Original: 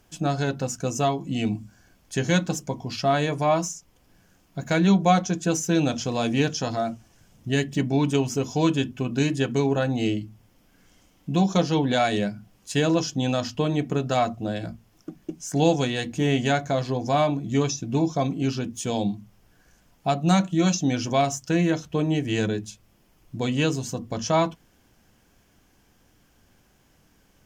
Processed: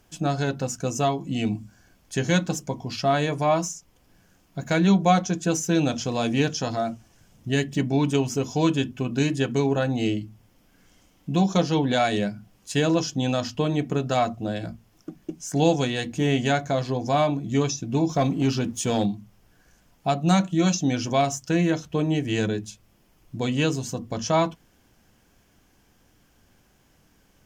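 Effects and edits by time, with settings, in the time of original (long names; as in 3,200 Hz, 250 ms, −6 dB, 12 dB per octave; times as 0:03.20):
0:18.09–0:19.06: leveller curve on the samples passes 1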